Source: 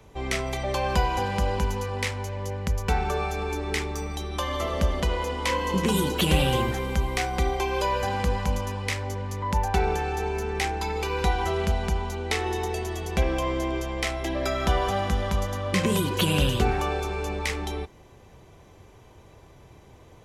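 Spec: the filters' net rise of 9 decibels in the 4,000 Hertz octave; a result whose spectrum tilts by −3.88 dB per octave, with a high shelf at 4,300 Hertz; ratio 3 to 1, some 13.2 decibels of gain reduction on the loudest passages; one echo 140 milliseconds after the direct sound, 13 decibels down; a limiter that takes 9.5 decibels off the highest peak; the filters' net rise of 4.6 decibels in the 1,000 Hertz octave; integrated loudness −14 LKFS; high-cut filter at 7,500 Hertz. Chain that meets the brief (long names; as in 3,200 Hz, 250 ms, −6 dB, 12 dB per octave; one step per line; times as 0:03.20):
low-pass filter 7,500 Hz
parametric band 1,000 Hz +5 dB
parametric band 4,000 Hz +7.5 dB
high-shelf EQ 4,300 Hz +8.5 dB
downward compressor 3 to 1, threshold −34 dBFS
brickwall limiter −23.5 dBFS
single-tap delay 140 ms −13 dB
level +20.5 dB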